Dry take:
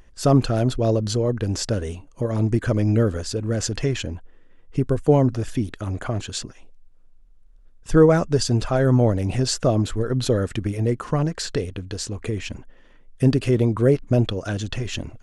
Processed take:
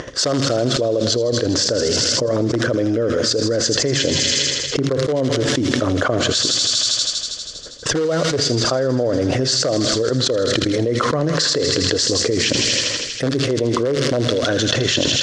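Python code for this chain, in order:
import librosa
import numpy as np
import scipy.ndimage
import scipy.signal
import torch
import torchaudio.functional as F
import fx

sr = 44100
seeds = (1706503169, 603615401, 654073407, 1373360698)

p1 = fx.transient(x, sr, attack_db=5, sustain_db=-5)
p2 = (np.mod(10.0 ** (6.0 / 20.0) * p1 + 1.0, 2.0) - 1.0) / 10.0 ** (6.0 / 20.0)
p3 = p1 + (p2 * 10.0 ** (-7.5 / 20.0))
p4 = fx.cabinet(p3, sr, low_hz=190.0, low_slope=12, high_hz=6300.0, hz=(200.0, 530.0, 840.0, 2500.0), db=(-9, 7, -8, -9))
p5 = p4 + fx.echo_wet_highpass(p4, sr, ms=80, feedback_pct=78, hz=2900.0, wet_db=-4, dry=0)
p6 = fx.room_shoebox(p5, sr, seeds[0], volume_m3=2300.0, walls='furnished', distance_m=0.42)
p7 = fx.env_flatten(p6, sr, amount_pct=100)
y = p7 * 10.0 ** (-13.0 / 20.0)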